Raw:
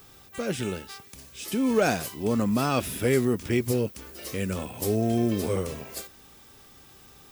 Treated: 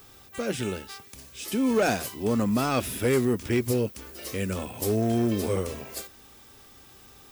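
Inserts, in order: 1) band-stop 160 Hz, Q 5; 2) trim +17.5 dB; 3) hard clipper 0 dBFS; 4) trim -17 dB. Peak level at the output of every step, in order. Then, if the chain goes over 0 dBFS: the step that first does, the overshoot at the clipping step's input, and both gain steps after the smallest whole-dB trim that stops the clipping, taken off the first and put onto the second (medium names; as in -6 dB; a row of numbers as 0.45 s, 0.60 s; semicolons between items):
-12.5 dBFS, +5.0 dBFS, 0.0 dBFS, -17.0 dBFS; step 2, 5.0 dB; step 2 +12.5 dB, step 4 -12 dB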